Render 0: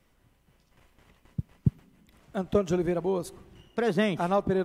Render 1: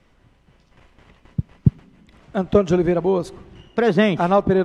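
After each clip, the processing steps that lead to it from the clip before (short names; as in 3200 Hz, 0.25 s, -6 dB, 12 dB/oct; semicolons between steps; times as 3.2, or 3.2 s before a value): Bessel low-pass 4700 Hz, order 2; gain +9 dB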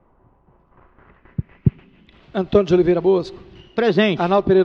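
small resonant body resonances 370/2600 Hz, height 6 dB; low-pass sweep 960 Hz -> 4300 Hz, 0.53–2.41; gain -1 dB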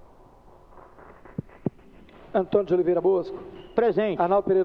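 compressor 5:1, threshold -24 dBFS, peak gain reduction 14.5 dB; band-pass 610 Hz, Q 0.91; added noise brown -60 dBFS; gain +7.5 dB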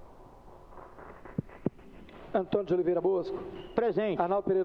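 compressor 6:1, threshold -24 dBFS, peak gain reduction 9 dB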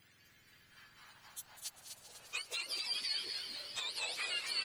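spectrum mirrored in octaves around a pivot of 1300 Hz; frequency-shifting echo 0.248 s, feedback 49%, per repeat -120 Hz, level -6 dB; warbling echo 0.197 s, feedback 76%, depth 174 cents, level -11.5 dB; gain -6.5 dB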